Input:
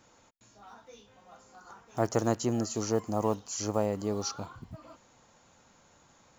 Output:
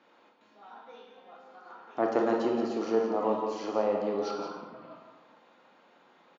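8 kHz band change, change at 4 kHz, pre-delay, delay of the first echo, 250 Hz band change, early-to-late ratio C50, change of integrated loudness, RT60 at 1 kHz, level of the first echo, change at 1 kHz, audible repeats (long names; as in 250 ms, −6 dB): can't be measured, −5.0 dB, 25 ms, 172 ms, +0.5 dB, 2.0 dB, +1.5 dB, 1.2 s, −8.5 dB, +3.5 dB, 1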